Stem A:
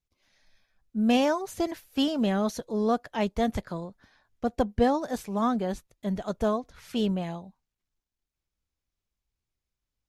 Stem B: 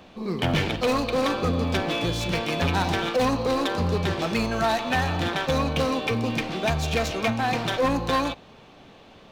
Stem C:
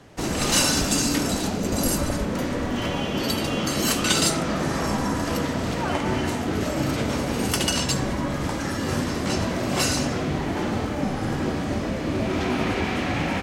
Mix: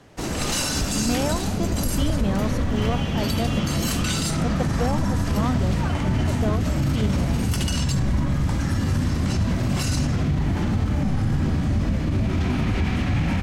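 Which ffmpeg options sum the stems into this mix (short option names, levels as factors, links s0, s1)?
-filter_complex "[0:a]volume=8.41,asoftclip=hard,volume=0.119,volume=0.794[s0];[1:a]acompressor=threshold=0.0316:ratio=6,adelay=1350,volume=0.376,afade=t=out:st=3.99:d=0.4:silence=0.266073[s1];[2:a]asubboost=boost=6.5:cutoff=160,alimiter=limit=0.224:level=0:latency=1:release=31,volume=0.841[s2];[s0][s1][s2]amix=inputs=3:normalize=0"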